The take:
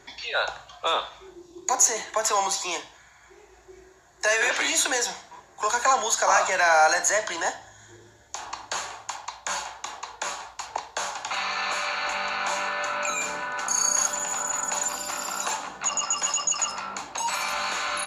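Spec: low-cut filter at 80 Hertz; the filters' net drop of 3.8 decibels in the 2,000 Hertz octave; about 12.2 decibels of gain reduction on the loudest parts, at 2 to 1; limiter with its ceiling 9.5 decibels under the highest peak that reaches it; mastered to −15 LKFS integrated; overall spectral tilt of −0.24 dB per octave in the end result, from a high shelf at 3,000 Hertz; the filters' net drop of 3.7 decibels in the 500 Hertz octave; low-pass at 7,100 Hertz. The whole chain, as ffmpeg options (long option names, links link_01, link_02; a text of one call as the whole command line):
ffmpeg -i in.wav -af "highpass=80,lowpass=7100,equalizer=frequency=500:width_type=o:gain=-4.5,equalizer=frequency=2000:width_type=o:gain=-3.5,highshelf=frequency=3000:gain=-4,acompressor=threshold=-41dB:ratio=2,volume=25dB,alimiter=limit=-5dB:level=0:latency=1" out.wav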